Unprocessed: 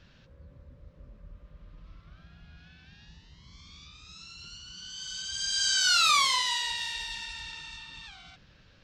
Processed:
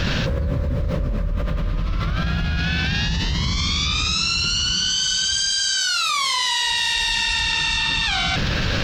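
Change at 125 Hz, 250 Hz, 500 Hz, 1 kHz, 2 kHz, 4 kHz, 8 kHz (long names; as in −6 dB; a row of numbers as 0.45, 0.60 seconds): +29.0 dB, can't be measured, +25.0 dB, +6.5 dB, +11.5 dB, +10.5 dB, +9.0 dB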